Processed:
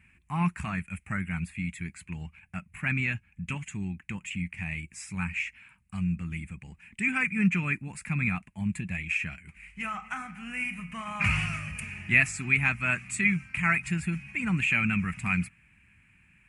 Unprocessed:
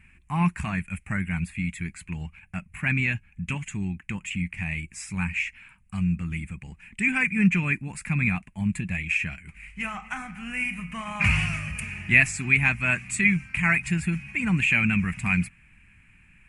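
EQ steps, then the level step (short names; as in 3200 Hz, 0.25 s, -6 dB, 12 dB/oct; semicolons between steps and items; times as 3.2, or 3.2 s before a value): HPF 58 Hz; dynamic EQ 1300 Hz, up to +7 dB, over -49 dBFS, Q 6.8; -4.0 dB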